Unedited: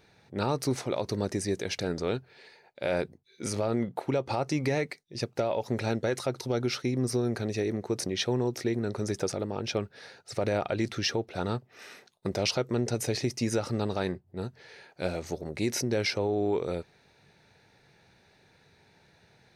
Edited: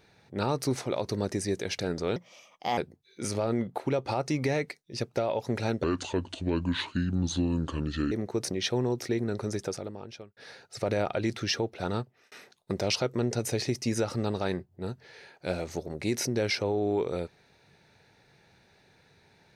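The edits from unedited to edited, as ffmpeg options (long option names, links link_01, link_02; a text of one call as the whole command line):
ffmpeg -i in.wav -filter_complex "[0:a]asplit=7[link_01][link_02][link_03][link_04][link_05][link_06][link_07];[link_01]atrim=end=2.164[link_08];[link_02]atrim=start=2.16:end=2.99,asetpts=PTS-STARTPTS,asetrate=59535,aresample=44100,atrim=end_sample=27113,asetpts=PTS-STARTPTS[link_09];[link_03]atrim=start=2.986:end=6.054[link_10];[link_04]atrim=start=6.05:end=7.67,asetpts=PTS-STARTPTS,asetrate=31311,aresample=44100[link_11];[link_05]atrim=start=7.666:end=9.92,asetpts=PTS-STARTPTS,afade=type=out:start_time=1.284:duration=0.97[link_12];[link_06]atrim=start=9.92:end=11.87,asetpts=PTS-STARTPTS,afade=type=in:duration=0.004:curve=hsin,afade=type=out:start_time=1.6:duration=0.35[link_13];[link_07]atrim=start=11.87,asetpts=PTS-STARTPTS,afade=type=in:duration=0.004:curve=hsin[link_14];[link_08][link_09]acrossfade=duration=0.004:curve1=hsin:curve2=hsin[link_15];[link_15][link_10]acrossfade=duration=0.004:curve1=hsin:curve2=hsin[link_16];[link_16][link_11]acrossfade=duration=0.004:curve1=hsin:curve2=hsin[link_17];[link_12][link_13][link_14]concat=n=3:v=0:a=1[link_18];[link_17][link_18]acrossfade=duration=0.004:curve1=hsin:curve2=hsin" out.wav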